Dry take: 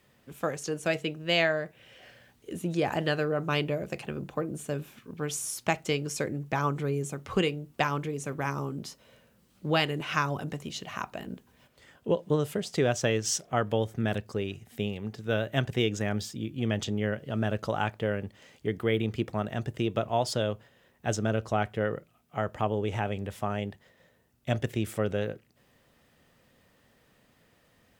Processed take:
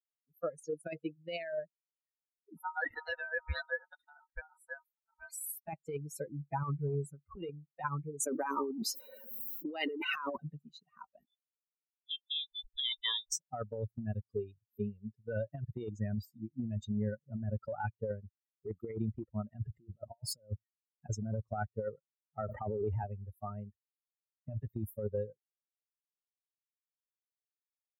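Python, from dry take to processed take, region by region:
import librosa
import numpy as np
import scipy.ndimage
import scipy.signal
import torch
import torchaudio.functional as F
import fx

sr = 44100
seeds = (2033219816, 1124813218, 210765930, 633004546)

y = fx.chain(x, sr, fx.highpass(hz=210.0, slope=12),
    fx.comb(ms=5.1, depth=0.44),
    fx.ring_mod(carrier_hz=1100.0), at=(2.57, 5.67))
y = fx.chain(y, sr, fx.highpass(hz=240.0, slope=24),
    fx.env_flatten(amount_pct=70), at=(8.2, 10.37))
y = fx.chain(y, sr, fx.freq_invert(carrier_hz=3700),
    fx.band_widen(depth_pct=70), at=(11.25, 13.32))
y = fx.chain(y, sr, fx.dynamic_eq(hz=4400.0, q=0.98, threshold_db=-46.0, ratio=4.0, max_db=-3),
    fx.over_compress(threshold_db=-33.0, ratio=-0.5), at=(19.56, 21.1))
y = fx.chain(y, sr, fx.highpass(hz=96.0, slope=12),
    fx.sustainer(db_per_s=23.0), at=(22.41, 23.04))
y = fx.bin_expand(y, sr, power=3.0)
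y = fx.peak_eq(y, sr, hz=4300.0, db=-12.5, octaves=2.5)
y = fx.over_compress(y, sr, threshold_db=-41.0, ratio=-1.0)
y = F.gain(torch.from_numpy(y), 5.5).numpy()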